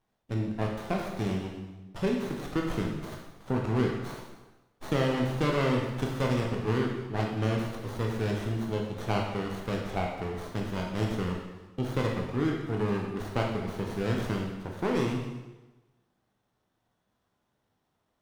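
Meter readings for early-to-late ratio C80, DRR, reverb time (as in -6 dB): 5.5 dB, -1.0 dB, 1.1 s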